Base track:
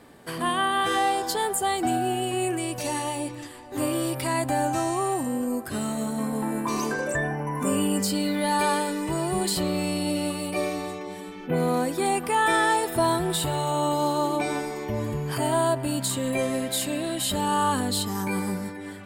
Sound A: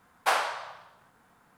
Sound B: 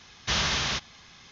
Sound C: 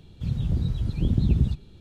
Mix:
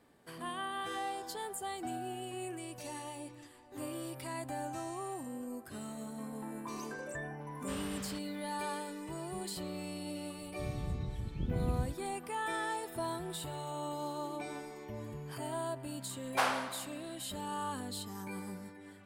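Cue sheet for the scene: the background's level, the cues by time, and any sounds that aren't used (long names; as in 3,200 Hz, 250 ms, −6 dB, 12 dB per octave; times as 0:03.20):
base track −15 dB
0:07.40: mix in B −15 dB + low-pass filter 1,300 Hz 6 dB per octave
0:10.38: mix in C −13 dB
0:16.11: mix in A −5.5 dB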